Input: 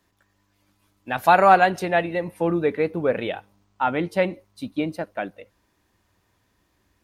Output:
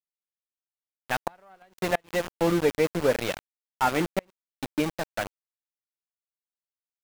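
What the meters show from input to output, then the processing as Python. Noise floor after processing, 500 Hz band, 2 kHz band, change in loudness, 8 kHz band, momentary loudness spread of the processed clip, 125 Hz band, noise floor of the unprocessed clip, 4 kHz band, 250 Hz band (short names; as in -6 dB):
under -85 dBFS, -5.0 dB, -7.0 dB, -6.0 dB, n/a, 11 LU, -3.0 dB, -69 dBFS, 0.0 dB, -3.0 dB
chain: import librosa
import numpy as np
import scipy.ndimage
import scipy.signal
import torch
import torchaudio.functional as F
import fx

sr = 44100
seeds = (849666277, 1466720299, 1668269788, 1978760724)

y = fx.diode_clip(x, sr, knee_db=-12.0)
y = np.where(np.abs(y) >= 10.0 ** (-26.0 / 20.0), y, 0.0)
y = fx.gate_flip(y, sr, shuts_db=-10.0, range_db=-38)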